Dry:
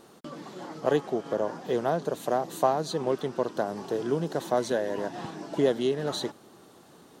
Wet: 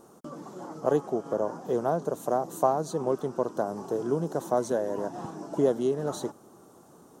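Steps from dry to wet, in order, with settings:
flat-topped bell 2,800 Hz −12 dB

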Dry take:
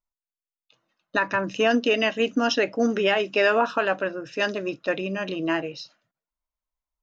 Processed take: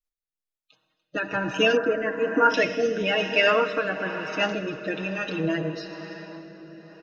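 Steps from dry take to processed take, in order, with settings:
spectral magnitudes quantised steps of 30 dB
comb filter 6.4 ms, depth 65%
convolution reverb RT60 5.6 s, pre-delay 53 ms, DRR 7 dB
rotating-speaker cabinet horn 1.1 Hz
0:01.77–0:02.54: high shelf with overshoot 2,200 Hz −13.5 dB, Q 3

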